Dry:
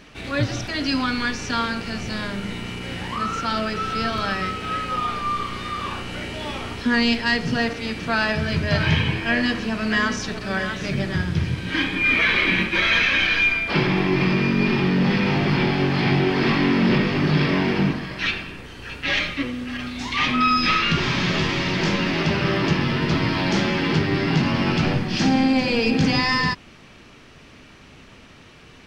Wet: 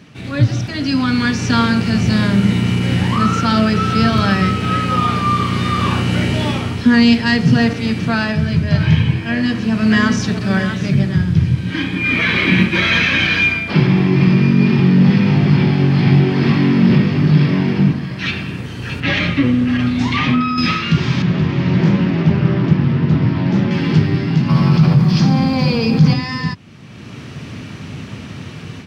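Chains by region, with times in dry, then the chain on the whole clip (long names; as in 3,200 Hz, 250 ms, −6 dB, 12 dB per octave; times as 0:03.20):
0:19.00–0:20.58: high-shelf EQ 5,100 Hz −12 dB + downward compressor, threshold −21 dBFS
0:21.22–0:23.71: low-pass filter 1,500 Hz 6 dB per octave + highs frequency-modulated by the lows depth 0.28 ms
0:24.48–0:26.13: loudspeaker in its box 130–6,400 Hz, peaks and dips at 150 Hz +10 dB, 270 Hz −8 dB, 1,100 Hz +8 dB, 1,800 Hz −4 dB, 2,800 Hz −5 dB, 4,700 Hz +3 dB + background noise brown −31 dBFS + envelope flattener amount 70%
whole clip: high-pass filter 96 Hz 24 dB per octave; bass and treble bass +14 dB, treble +1 dB; automatic gain control; level −1 dB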